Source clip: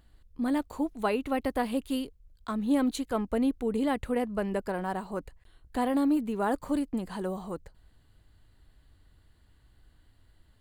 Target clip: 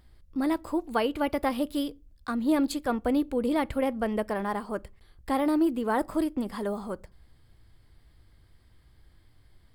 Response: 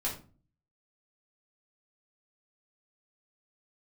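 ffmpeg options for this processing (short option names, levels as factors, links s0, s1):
-filter_complex "[0:a]asetrate=48000,aresample=44100,asplit=2[s0][s1];[1:a]atrim=start_sample=2205,asetrate=57330,aresample=44100[s2];[s1][s2]afir=irnorm=-1:irlink=0,volume=0.0841[s3];[s0][s3]amix=inputs=2:normalize=0,volume=1.19"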